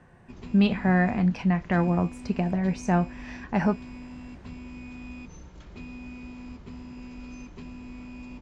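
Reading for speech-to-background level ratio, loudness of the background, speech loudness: 17.0 dB, -42.5 LUFS, -25.5 LUFS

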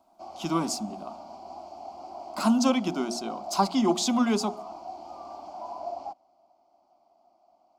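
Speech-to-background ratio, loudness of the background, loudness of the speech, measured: 14.5 dB, -41.0 LUFS, -26.5 LUFS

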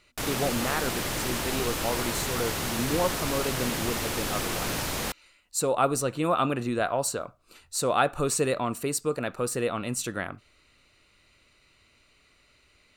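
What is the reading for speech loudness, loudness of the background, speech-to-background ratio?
-29.5 LUFS, -29.5 LUFS, 0.0 dB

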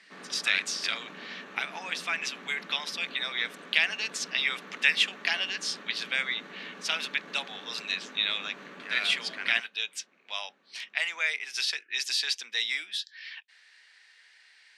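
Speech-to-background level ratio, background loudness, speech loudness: 16.5 dB, -46.0 LUFS, -29.5 LUFS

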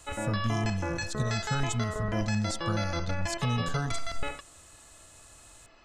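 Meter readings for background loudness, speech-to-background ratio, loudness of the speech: -34.5 LUFS, 1.5 dB, -33.0 LUFS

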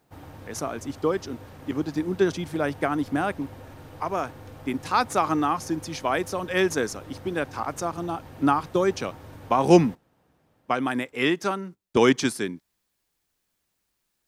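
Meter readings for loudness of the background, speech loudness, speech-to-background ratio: -44.5 LUFS, -26.0 LUFS, 18.5 dB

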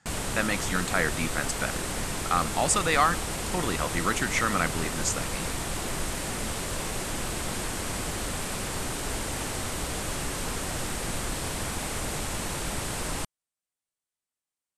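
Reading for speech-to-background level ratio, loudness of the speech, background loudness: 3.5 dB, -28.0 LUFS, -31.5 LUFS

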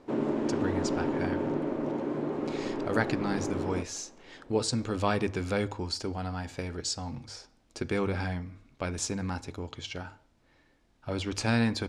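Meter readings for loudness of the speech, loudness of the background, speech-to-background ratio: -33.0 LUFS, -32.0 LUFS, -1.0 dB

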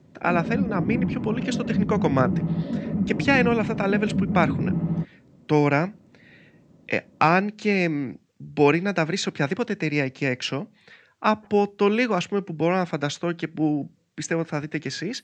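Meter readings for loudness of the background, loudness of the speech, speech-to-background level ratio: -26.5 LUFS, -24.5 LUFS, 2.0 dB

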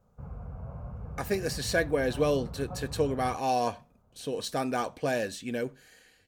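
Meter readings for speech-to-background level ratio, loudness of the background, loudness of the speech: 11.5 dB, -42.0 LUFS, -30.5 LUFS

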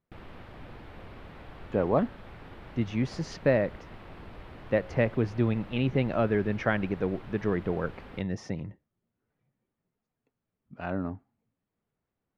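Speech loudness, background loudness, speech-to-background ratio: -29.5 LUFS, -47.5 LUFS, 18.0 dB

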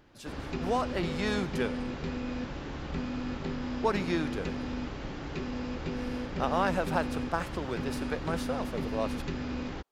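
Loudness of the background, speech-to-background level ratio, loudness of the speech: -36.0 LUFS, 2.5 dB, -33.5 LUFS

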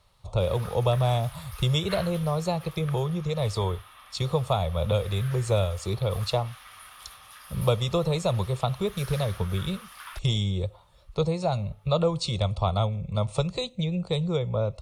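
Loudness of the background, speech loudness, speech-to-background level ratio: -45.0 LUFS, -27.5 LUFS, 17.5 dB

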